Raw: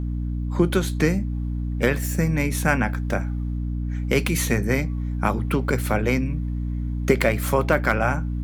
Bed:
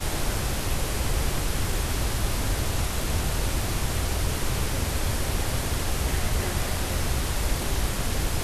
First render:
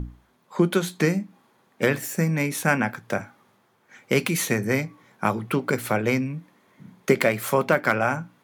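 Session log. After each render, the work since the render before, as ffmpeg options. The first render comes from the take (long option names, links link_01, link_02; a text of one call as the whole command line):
ffmpeg -i in.wav -af "bandreject=frequency=60:width_type=h:width=6,bandreject=frequency=120:width_type=h:width=6,bandreject=frequency=180:width_type=h:width=6,bandreject=frequency=240:width_type=h:width=6,bandreject=frequency=300:width_type=h:width=6" out.wav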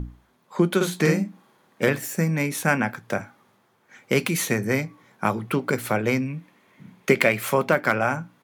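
ffmpeg -i in.wav -filter_complex "[0:a]asplit=3[link_01][link_02][link_03];[link_01]afade=type=out:start_time=0.8:duration=0.02[link_04];[link_02]asplit=2[link_05][link_06];[link_06]adelay=50,volume=-2dB[link_07];[link_05][link_07]amix=inputs=2:normalize=0,afade=type=in:start_time=0.8:duration=0.02,afade=type=out:start_time=1.88:duration=0.02[link_08];[link_03]afade=type=in:start_time=1.88:duration=0.02[link_09];[link_04][link_08][link_09]amix=inputs=3:normalize=0,asettb=1/sr,asplit=3[link_10][link_11][link_12];[link_10]atrim=end=6.284[link_13];[link_11]atrim=start=6.28:end=7.53,asetpts=PTS-STARTPTS,afade=type=in:duration=0.004:curve=qsin,afade=type=out:start_time=1.246:duration=0.004:curve=qsin,equalizer=frequency=2500:width=1.9:gain=6[link_14];[link_12]atrim=start=7.526[link_15];[link_13][link_14]acrossfade=duration=0.004:curve1=hsin:curve2=qsin[link_16];[link_16][link_15]acrossfade=duration=0.004:curve1=qsin:curve2=hsin" out.wav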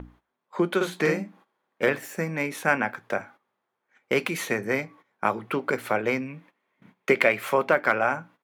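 ffmpeg -i in.wav -af "agate=range=-15dB:threshold=-45dB:ratio=16:detection=peak,bass=frequency=250:gain=-12,treble=frequency=4000:gain=-10" out.wav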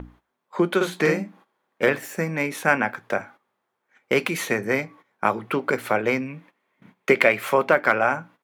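ffmpeg -i in.wav -af "volume=3dB" out.wav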